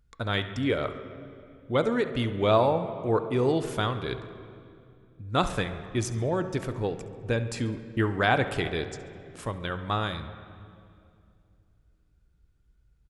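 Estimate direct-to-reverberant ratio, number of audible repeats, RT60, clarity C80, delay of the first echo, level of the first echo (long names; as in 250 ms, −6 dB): 9.0 dB, 2, 2.4 s, 11.5 dB, 69 ms, −17.0 dB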